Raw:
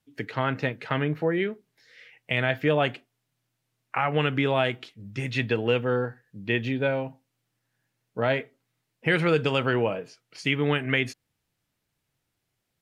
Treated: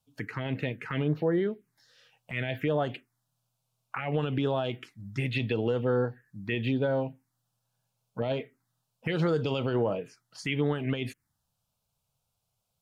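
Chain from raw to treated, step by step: peak limiter -17.5 dBFS, peak gain reduction 9 dB; touch-sensitive phaser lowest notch 320 Hz, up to 2.5 kHz, full sweep at -23 dBFS; trim +1 dB

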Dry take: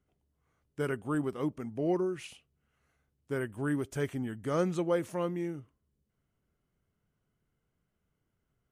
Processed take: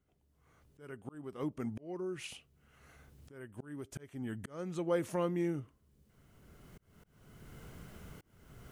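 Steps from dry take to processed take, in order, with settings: recorder AGC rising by 18 dB/s; slow attack 590 ms; trim -1 dB

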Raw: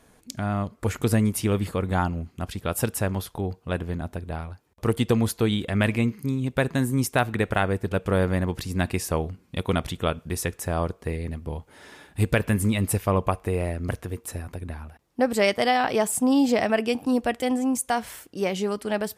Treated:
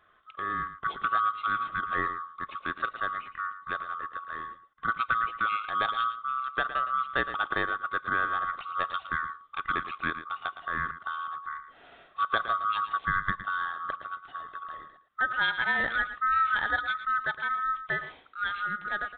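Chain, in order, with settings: split-band scrambler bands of 1 kHz; delay 113 ms -12 dB; resampled via 8 kHz; trim -6 dB

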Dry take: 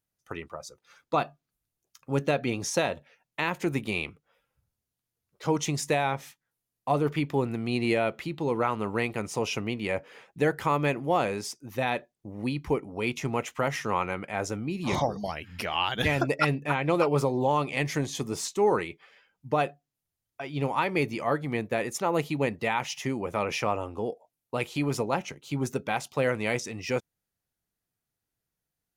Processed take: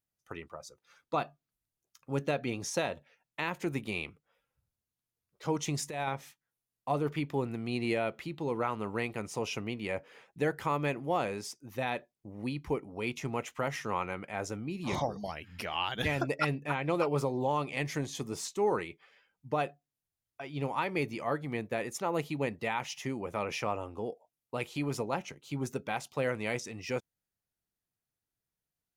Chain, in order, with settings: 5.68–6.09 s: compressor with a negative ratio -27 dBFS, ratio -0.5; trim -5.5 dB

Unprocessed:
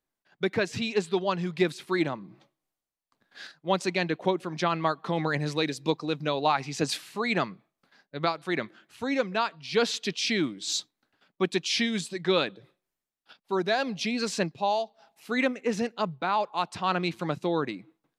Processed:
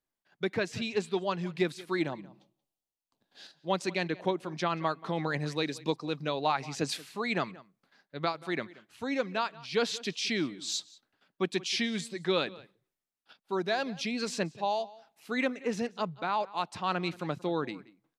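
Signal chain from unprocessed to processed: 2.10–3.70 s: high-order bell 1.6 kHz -9 dB 1.2 oct; echo from a far wall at 31 m, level -20 dB; trim -4 dB

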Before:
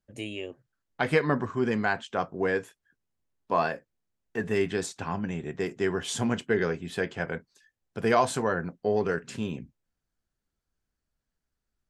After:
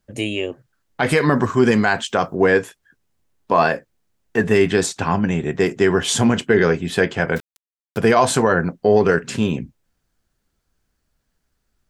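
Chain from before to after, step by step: 1.09–2.35 s: treble shelf 5.5 kHz +11 dB; 7.36–7.98 s: word length cut 8-bit, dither none; loudness maximiser +15.5 dB; trim -3 dB

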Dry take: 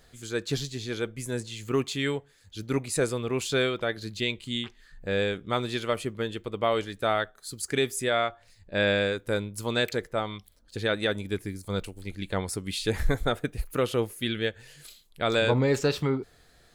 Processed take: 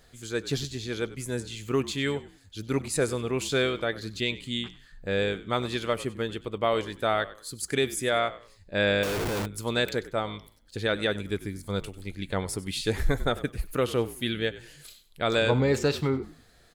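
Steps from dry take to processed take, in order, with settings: frequency-shifting echo 96 ms, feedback 30%, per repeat -53 Hz, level -17 dB; 9.03–9.46 s: Schmitt trigger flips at -45.5 dBFS

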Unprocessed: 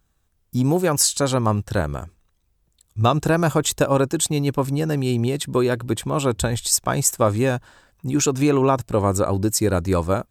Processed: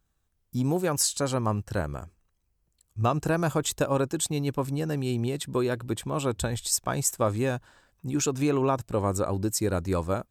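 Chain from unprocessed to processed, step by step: 1.21–3.31 s: band-stop 3.6 kHz, Q 5.8; trim -7 dB

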